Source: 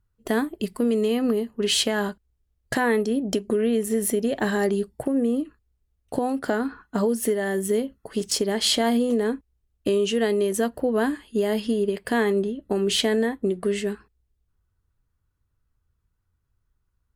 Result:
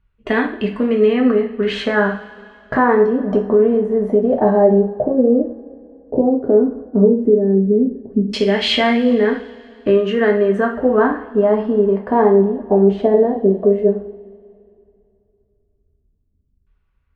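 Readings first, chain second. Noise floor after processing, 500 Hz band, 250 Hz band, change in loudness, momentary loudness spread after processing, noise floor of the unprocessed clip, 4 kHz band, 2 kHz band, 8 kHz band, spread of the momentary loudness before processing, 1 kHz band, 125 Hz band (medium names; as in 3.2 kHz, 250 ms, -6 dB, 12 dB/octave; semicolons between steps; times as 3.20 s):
-64 dBFS, +10.0 dB, +8.0 dB, +8.5 dB, 7 LU, -74 dBFS, +1.0 dB, +6.5 dB, under -15 dB, 7 LU, +9.5 dB, no reading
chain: LFO low-pass saw down 0.12 Hz 250–2700 Hz; two-slope reverb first 0.42 s, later 2.6 s, from -21 dB, DRR -0.5 dB; trim +3.5 dB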